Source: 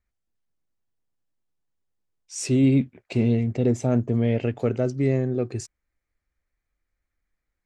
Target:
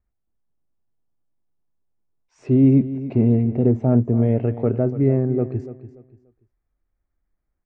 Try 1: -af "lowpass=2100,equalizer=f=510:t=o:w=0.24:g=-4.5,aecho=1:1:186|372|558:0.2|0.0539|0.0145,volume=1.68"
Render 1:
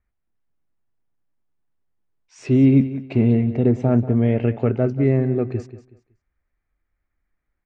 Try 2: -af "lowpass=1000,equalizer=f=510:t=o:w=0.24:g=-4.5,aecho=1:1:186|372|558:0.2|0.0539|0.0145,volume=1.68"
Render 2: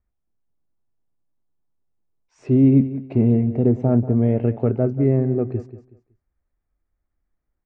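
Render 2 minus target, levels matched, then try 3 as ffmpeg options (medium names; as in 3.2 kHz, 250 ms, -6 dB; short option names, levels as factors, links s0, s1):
echo 104 ms early
-af "lowpass=1000,equalizer=f=510:t=o:w=0.24:g=-4.5,aecho=1:1:290|580|870:0.2|0.0539|0.0145,volume=1.68"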